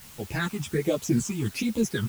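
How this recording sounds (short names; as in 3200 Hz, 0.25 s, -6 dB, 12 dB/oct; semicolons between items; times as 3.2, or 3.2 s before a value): phasing stages 8, 1.3 Hz, lowest notch 520–1700 Hz; a quantiser's noise floor 8-bit, dither triangular; a shimmering, thickened sound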